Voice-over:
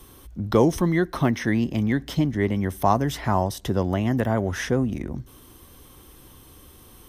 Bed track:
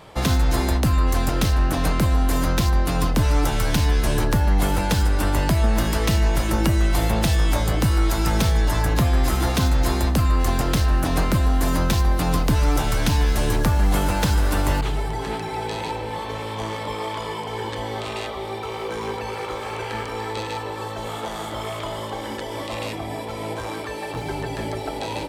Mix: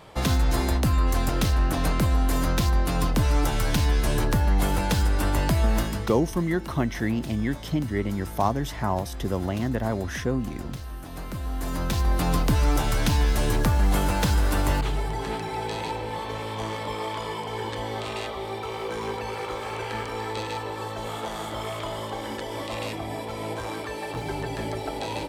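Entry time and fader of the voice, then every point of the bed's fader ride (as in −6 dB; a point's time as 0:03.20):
5.55 s, −4.0 dB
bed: 0:05.78 −3 dB
0:06.18 −18 dB
0:11.04 −18 dB
0:12.17 −2.5 dB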